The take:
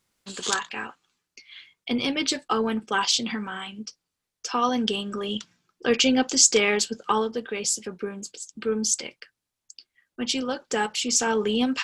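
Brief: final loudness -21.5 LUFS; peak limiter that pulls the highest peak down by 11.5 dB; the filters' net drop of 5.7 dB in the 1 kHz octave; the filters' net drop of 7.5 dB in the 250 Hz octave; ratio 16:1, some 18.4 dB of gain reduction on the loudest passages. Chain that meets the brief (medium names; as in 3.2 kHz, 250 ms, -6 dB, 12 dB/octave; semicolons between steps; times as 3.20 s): peaking EQ 250 Hz -8 dB; peaking EQ 1 kHz -7 dB; compression 16:1, threshold -31 dBFS; trim +16 dB; peak limiter -9.5 dBFS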